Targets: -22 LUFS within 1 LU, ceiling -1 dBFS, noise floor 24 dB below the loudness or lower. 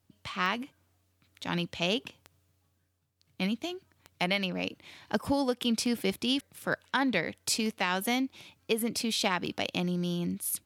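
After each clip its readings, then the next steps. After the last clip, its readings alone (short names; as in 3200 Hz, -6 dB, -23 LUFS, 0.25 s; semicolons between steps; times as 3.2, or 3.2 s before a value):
clicks 6; loudness -31.0 LUFS; peak -13.5 dBFS; loudness target -22.0 LUFS
-> de-click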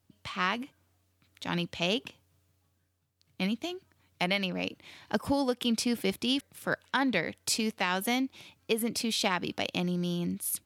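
clicks 0; loudness -31.0 LUFS; peak -13.5 dBFS; loudness target -22.0 LUFS
-> gain +9 dB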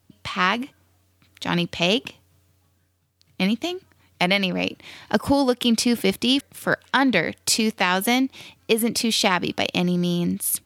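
loudness -22.0 LUFS; peak -4.5 dBFS; noise floor -65 dBFS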